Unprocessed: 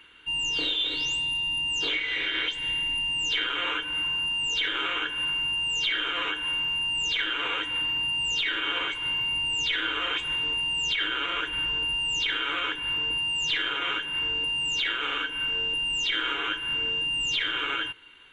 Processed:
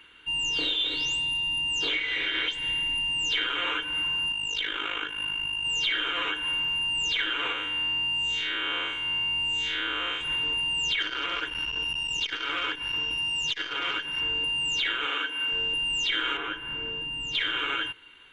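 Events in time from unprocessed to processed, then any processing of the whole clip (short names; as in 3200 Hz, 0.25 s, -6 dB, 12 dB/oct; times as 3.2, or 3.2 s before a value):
4.32–5.65 AM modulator 52 Hz, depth 50%
7.52–10.21 time blur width 0.137 s
11–14.21 core saturation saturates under 1000 Hz
15.06–15.52 HPF 240 Hz
16.37–17.35 high shelf 2700 Hz -11.5 dB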